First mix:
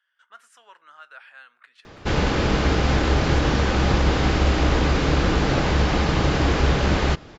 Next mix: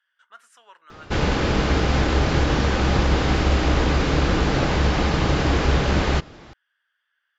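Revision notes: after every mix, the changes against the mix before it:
background: entry −0.95 s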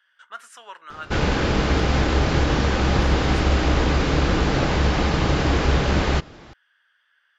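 speech +9.5 dB

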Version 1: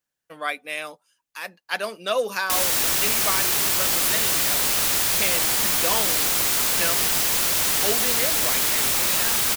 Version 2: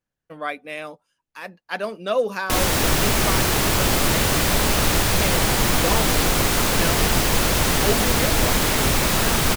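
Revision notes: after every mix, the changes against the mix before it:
background +7.0 dB
master: add spectral tilt −3 dB per octave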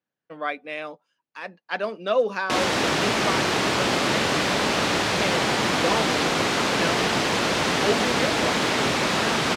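master: add band-pass filter 190–4,900 Hz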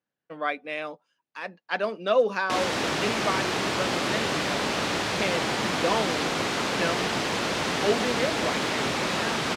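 background −4.5 dB

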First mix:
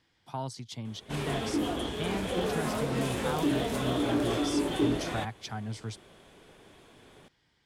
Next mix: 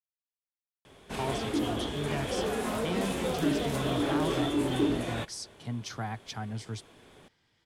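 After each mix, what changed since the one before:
speech: entry +0.85 s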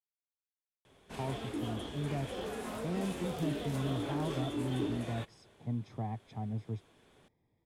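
speech: add moving average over 30 samples
background −8.5 dB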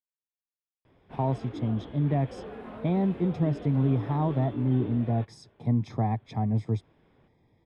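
speech +11.0 dB
background: add high-frequency loss of the air 470 metres

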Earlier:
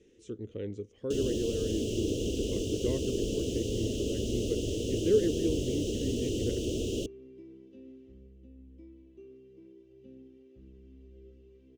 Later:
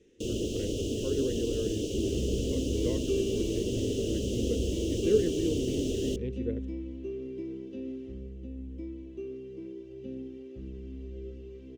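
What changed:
first sound: entry −0.90 s
second sound +12.0 dB

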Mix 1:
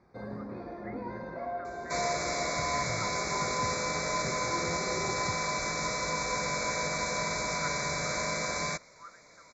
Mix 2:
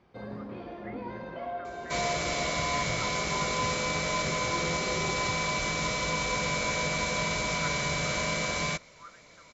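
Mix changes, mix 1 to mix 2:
second sound: add low-shelf EQ 260 Hz +7 dB
master: remove Butterworth band-reject 3,000 Hz, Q 1.7

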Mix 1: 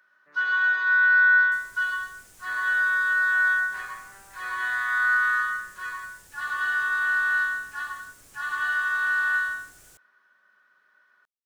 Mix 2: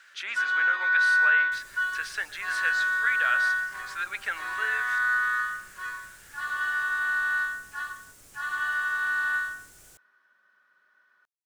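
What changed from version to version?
speech: unmuted
first sound: send −9.0 dB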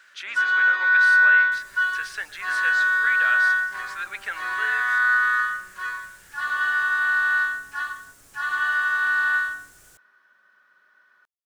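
first sound +5.5 dB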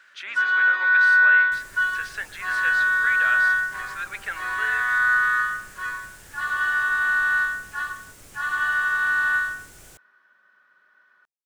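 second sound +8.5 dB
master: add bass and treble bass +1 dB, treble −5 dB

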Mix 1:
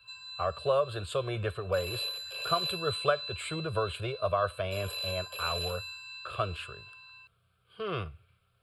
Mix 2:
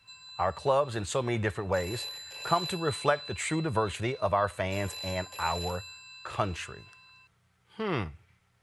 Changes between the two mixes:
background −6.0 dB
master: remove phaser with its sweep stopped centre 1,300 Hz, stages 8

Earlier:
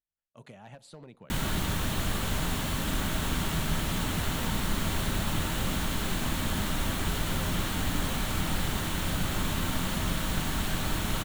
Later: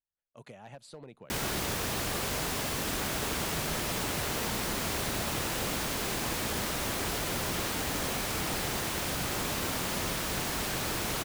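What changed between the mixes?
background: add high-pass filter 81 Hz 6 dB per octave
reverb: off

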